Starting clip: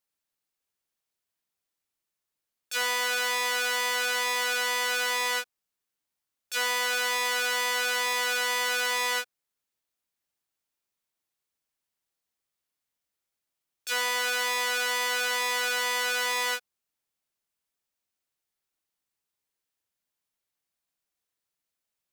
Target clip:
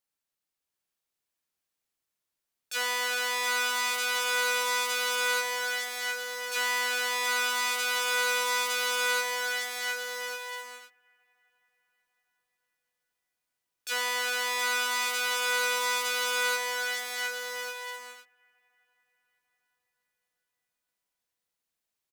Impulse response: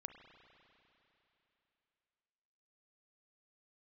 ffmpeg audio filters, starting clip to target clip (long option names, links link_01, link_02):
-filter_complex "[0:a]aecho=1:1:720|1152|1411|1567|1660:0.631|0.398|0.251|0.158|0.1,asplit=2[link_01][link_02];[1:a]atrim=start_sample=2205,asetrate=27783,aresample=44100[link_03];[link_02][link_03]afir=irnorm=-1:irlink=0,volume=-8.5dB[link_04];[link_01][link_04]amix=inputs=2:normalize=0,volume=-4dB"